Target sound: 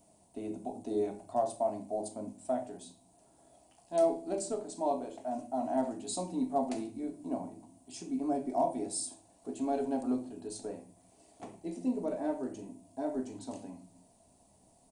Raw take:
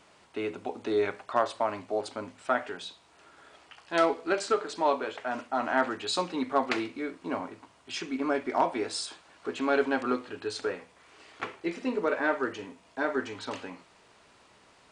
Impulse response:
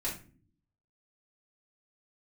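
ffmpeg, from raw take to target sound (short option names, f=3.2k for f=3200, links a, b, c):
-filter_complex "[0:a]firequalizer=gain_entry='entry(230,0);entry(440,-11);entry(670,0);entry(1300,-26);entry(9200,8)':delay=0.05:min_phase=1,asplit=2[a][b];[1:a]atrim=start_sample=2205[c];[b][c]afir=irnorm=-1:irlink=0,volume=-5dB[d];[a][d]amix=inputs=2:normalize=0,volume=-4dB"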